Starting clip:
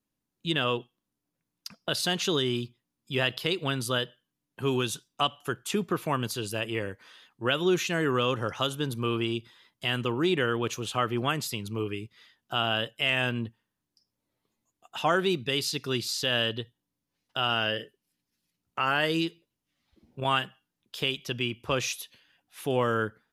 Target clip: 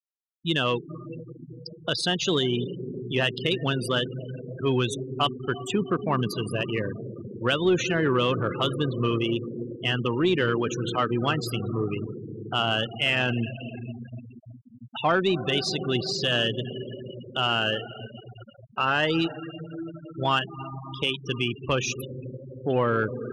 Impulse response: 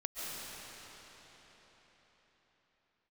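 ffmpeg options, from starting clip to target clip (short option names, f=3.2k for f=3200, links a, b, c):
-filter_complex "[0:a]asplit=2[a][b];[1:a]atrim=start_sample=2205,asetrate=28224,aresample=44100,lowshelf=f=300:g=8[c];[b][c]afir=irnorm=-1:irlink=0,volume=-15dB[d];[a][d]amix=inputs=2:normalize=0,afftfilt=real='re*gte(hypot(re,im),0.0398)':imag='im*gte(hypot(re,im),0.0398)':win_size=1024:overlap=0.75,aeval=exprs='0.335*(cos(1*acos(clip(val(0)/0.335,-1,1)))-cos(1*PI/2))+0.0168*(cos(5*acos(clip(val(0)/0.335,-1,1)))-cos(5*PI/2))+0.00376*(cos(6*acos(clip(val(0)/0.335,-1,1)))-cos(6*PI/2))':c=same"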